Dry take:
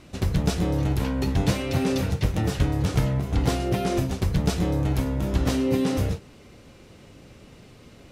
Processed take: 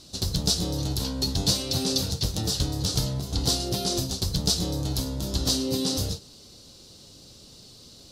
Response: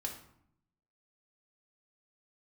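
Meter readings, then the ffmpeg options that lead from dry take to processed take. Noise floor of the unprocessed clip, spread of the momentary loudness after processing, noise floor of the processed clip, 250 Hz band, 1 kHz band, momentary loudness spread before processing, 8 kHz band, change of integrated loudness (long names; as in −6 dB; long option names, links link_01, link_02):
−50 dBFS, 5 LU, −50 dBFS, −5.0 dB, −6.0 dB, 2 LU, +10.0 dB, −1.0 dB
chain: -af "highshelf=frequency=3100:width_type=q:width=3:gain=12,volume=-5dB"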